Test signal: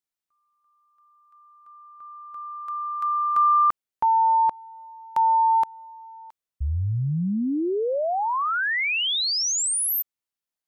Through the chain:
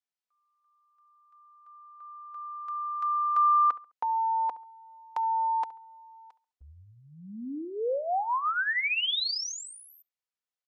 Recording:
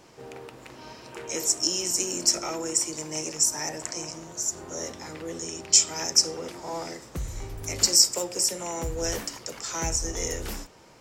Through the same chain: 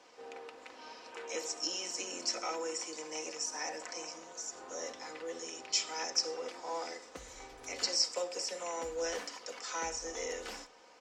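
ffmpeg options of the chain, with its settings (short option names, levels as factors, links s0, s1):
-filter_complex "[0:a]acrossover=split=5100[s0][s1];[s1]acompressor=threshold=0.0141:ratio=4:attack=1:release=60[s2];[s0][s2]amix=inputs=2:normalize=0,acrossover=split=350 7600:gain=0.0891 1 0.1[s3][s4][s5];[s3][s4][s5]amix=inputs=3:normalize=0,aecho=1:1:4:0.52,asplit=2[s6][s7];[s7]adelay=69,lowpass=f=2500:p=1,volume=0.126,asplit=2[s8][s9];[s9]adelay=69,lowpass=f=2500:p=1,volume=0.34,asplit=2[s10][s11];[s11]adelay=69,lowpass=f=2500:p=1,volume=0.34[s12];[s6][s8][s10][s12]amix=inputs=4:normalize=0,volume=0.562"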